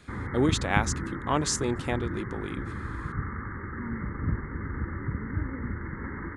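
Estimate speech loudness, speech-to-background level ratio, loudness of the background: -29.5 LUFS, 4.5 dB, -34.0 LUFS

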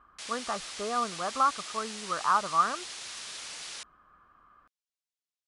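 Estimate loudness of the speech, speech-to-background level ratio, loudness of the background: -30.5 LUFS, 8.5 dB, -39.0 LUFS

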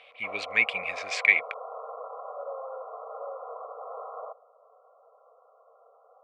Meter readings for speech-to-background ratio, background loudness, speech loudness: 15.0 dB, -40.0 LUFS, -25.0 LUFS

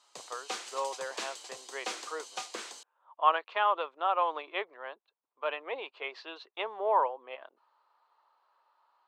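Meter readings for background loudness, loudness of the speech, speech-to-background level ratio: -41.0 LUFS, -33.0 LUFS, 8.0 dB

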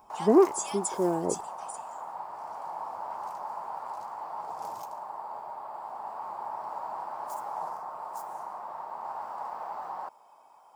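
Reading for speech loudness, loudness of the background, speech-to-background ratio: -26.0 LUFS, -37.5 LUFS, 11.5 dB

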